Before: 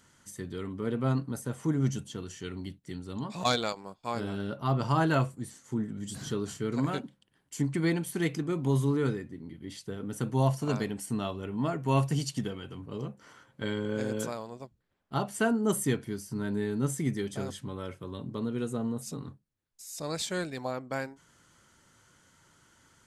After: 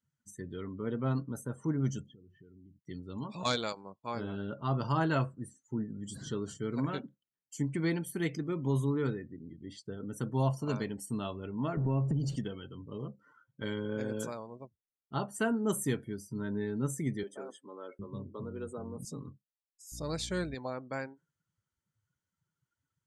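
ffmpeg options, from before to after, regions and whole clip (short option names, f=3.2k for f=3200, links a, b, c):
-filter_complex "[0:a]asettb=1/sr,asplit=3[a][b][c];[a]atrim=end=2.064[d];[b]atrim=start=2.06:end=2.76,asetpts=PTS-STARTPTS,afade=t=in:d=0.004:c=qsin,afade=t=out:st=0.696:d=0.004:c=qsin,lowpass=3.3k,highshelf=f=2.6k:g=-8.5,acompressor=threshold=-48dB:ratio=10:attack=3.2:release=140:knee=1:detection=peak[e];[c]atrim=start=2.756[f];[d][e]acrossfade=d=0.004:c1=hsin:c2=qsin[g];[g][f]acrossfade=d=0.004:c1=qsin:c2=hsin,asettb=1/sr,asplit=3[h][i][j];[h]atrim=end=11.774[k];[i]atrim=start=11.77:end=12.36,asetpts=PTS-STARTPTS,afade=t=in:d=0.004:c=qsin,afade=t=out:st=0.586:d=0.004:c=qsin,aeval=exprs='val(0)+0.5*0.0188*sgn(val(0))':c=same,tiltshelf=f=890:g=9,acompressor=threshold=-24dB:ratio=5:attack=3.2:release=140:knee=1:detection=peak[l];[j]atrim=start=12.356[m];[k][l]acrossfade=d=0.004:c1=hsin:c2=qsin[n];[n][m]acrossfade=d=0.004:c1=qsin:c2=hsin,asettb=1/sr,asplit=3[o][p][q];[o]atrim=end=17.234[r];[p]atrim=start=17.23:end=19.05,asetpts=PTS-STARTPTS,afade=t=in:d=0.004:c=qsin,afade=t=out:st=1.816:d=0.004:c=qsin,equalizer=f=4k:t=o:w=1.9:g=-6,acrossover=split=280[s][t];[s]adelay=760[u];[u][t]amix=inputs=2:normalize=0,atrim=end_sample=80262[v];[q]atrim=start=19.046[w];[r][v]acrossfade=d=0.004:c1=hsin:c2=qsin[x];[x][w]acrossfade=d=0.004:c1=qsin:c2=hsin,asettb=1/sr,asplit=3[y][z][aa];[y]atrim=end=19.924[ab];[z]atrim=start=19.92:end=20.55,asetpts=PTS-STARTPTS,afade=t=in:d=0.004:c=qsin,afade=t=out:st=0.626:d=0.004:c=qsin,aeval=exprs='val(0)+0.00447*(sin(2*PI*60*n/s)+sin(2*PI*2*60*n/s)/2+sin(2*PI*3*60*n/s)/3+sin(2*PI*4*60*n/s)/4+sin(2*PI*5*60*n/s)/5)':c=same,lowshelf=f=300:g=5.5,bandreject=f=7.8k:w=13[ac];[aa]atrim=start=20.546[ad];[ab][ac]acrossfade=d=0.004:c1=hsin:c2=qsin[ae];[ae][ad]acrossfade=d=0.004:c1=qsin:c2=hsin,bandreject=f=730:w=12,afftdn=nr=27:nf=-49,volume=-3.5dB"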